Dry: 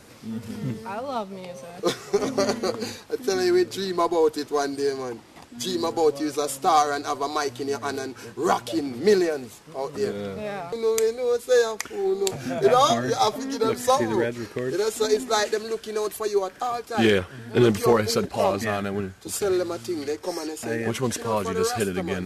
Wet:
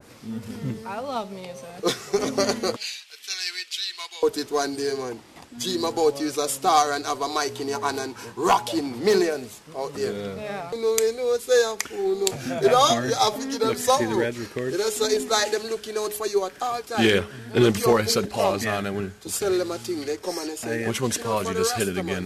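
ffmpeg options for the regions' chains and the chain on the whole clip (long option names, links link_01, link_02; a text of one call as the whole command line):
ffmpeg -i in.wav -filter_complex "[0:a]asettb=1/sr,asplit=3[link_01][link_02][link_03];[link_01]atrim=end=2.764[link_04];[link_02]atrim=start=2.76:end=4.23,asetpts=PTS-STARTPTS,afade=type=in:duration=0.004:curve=qsin,afade=type=out:start_time=1.466:duration=0.004:curve=qsin,highpass=frequency=2700:width_type=q:width=2.1,highshelf=frequency=11000:gain=-8.5[link_05];[link_03]atrim=start=4.226[link_06];[link_04][link_05]acrossfade=duration=0.004:curve1=hsin:curve2=qsin[link_07];[link_07][link_06]acrossfade=duration=0.004:curve1=qsin:curve2=hsin,asettb=1/sr,asplit=3[link_08][link_09][link_10];[link_08]atrim=end=7.554[link_11];[link_09]atrim=start=7.55:end=9.23,asetpts=PTS-STARTPTS,afade=type=in:duration=0.004:curve=qsin,afade=type=out:start_time=1.676:duration=0.004:curve=qsin,equalizer=frequency=940:width=3.6:gain=10,asoftclip=type=hard:threshold=-11dB[link_12];[link_10]atrim=start=9.226[link_13];[link_11][link_12]acrossfade=duration=0.004:curve1=hsin:curve2=qsin[link_14];[link_14][link_13]acrossfade=duration=0.004:curve1=qsin:curve2=hsin,bandreject=frequency=209.7:width_type=h:width=4,bandreject=frequency=419.4:width_type=h:width=4,bandreject=frequency=629.1:width_type=h:width=4,bandreject=frequency=838.8:width_type=h:width=4,adynamicequalizer=threshold=0.0178:dfrequency=1900:dqfactor=0.7:tfrequency=1900:tqfactor=0.7:attack=5:release=100:ratio=0.375:range=2:mode=boostabove:tftype=highshelf" out.wav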